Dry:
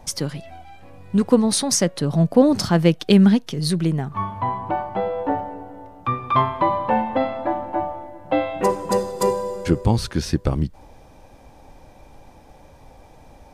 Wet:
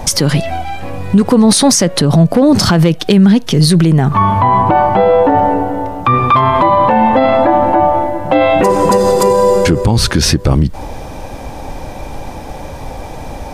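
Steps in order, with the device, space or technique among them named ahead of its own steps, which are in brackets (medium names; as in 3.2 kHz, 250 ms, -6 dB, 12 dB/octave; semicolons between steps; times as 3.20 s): loud club master (compression 2.5:1, threshold -20 dBFS, peak gain reduction 8.5 dB; hard clipper -12 dBFS, distortion -31 dB; loudness maximiser +22 dB); trim -1 dB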